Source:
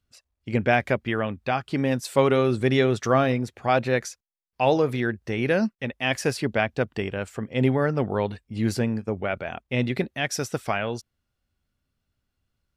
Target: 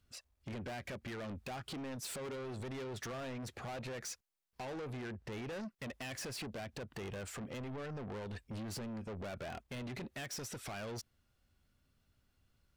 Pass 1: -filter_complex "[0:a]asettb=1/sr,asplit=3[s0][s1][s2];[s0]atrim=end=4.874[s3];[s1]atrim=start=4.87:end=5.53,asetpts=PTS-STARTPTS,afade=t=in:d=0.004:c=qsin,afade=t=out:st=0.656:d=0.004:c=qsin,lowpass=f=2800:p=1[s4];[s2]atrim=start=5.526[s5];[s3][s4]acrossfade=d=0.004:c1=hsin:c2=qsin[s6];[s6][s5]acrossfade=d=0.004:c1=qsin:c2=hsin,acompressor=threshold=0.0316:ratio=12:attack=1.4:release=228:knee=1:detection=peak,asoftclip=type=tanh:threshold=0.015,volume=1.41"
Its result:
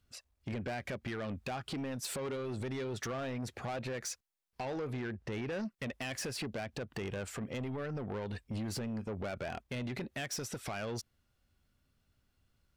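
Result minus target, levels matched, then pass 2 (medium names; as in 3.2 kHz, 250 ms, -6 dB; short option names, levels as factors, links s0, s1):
saturation: distortion -5 dB
-filter_complex "[0:a]asettb=1/sr,asplit=3[s0][s1][s2];[s0]atrim=end=4.874[s3];[s1]atrim=start=4.87:end=5.53,asetpts=PTS-STARTPTS,afade=t=in:d=0.004:c=qsin,afade=t=out:st=0.656:d=0.004:c=qsin,lowpass=f=2800:p=1[s4];[s2]atrim=start=5.526[s5];[s3][s4]acrossfade=d=0.004:c1=hsin:c2=qsin[s6];[s6][s5]acrossfade=d=0.004:c1=qsin:c2=hsin,acompressor=threshold=0.0316:ratio=12:attack=1.4:release=228:knee=1:detection=peak,asoftclip=type=tanh:threshold=0.00668,volume=1.41"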